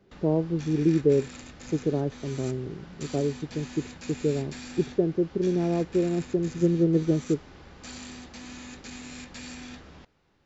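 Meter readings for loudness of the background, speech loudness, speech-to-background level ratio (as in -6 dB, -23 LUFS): -43.0 LUFS, -27.0 LUFS, 16.0 dB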